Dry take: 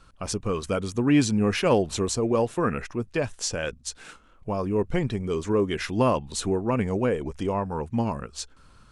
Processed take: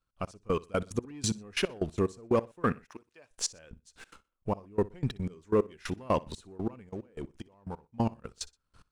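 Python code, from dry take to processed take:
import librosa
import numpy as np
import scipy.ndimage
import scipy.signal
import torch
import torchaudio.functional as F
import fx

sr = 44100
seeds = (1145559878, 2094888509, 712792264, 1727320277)

y = fx.highpass(x, sr, hz=820.0, slope=6, at=(2.85, 3.31))
y = fx.level_steps(y, sr, step_db=18, at=(6.89, 7.94))
y = fx.leveller(y, sr, passes=1)
y = fx.step_gate(y, sr, bpm=182, pattern='..x...x..x.x.', floor_db=-24.0, edge_ms=4.5)
y = fx.echo_feedback(y, sr, ms=61, feedback_pct=32, wet_db=-22.0)
y = y * 10.0 ** (-4.5 / 20.0)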